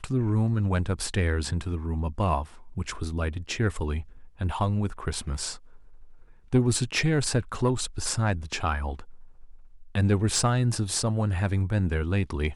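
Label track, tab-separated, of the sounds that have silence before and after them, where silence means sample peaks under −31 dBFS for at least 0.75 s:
6.530000	8.990000	sound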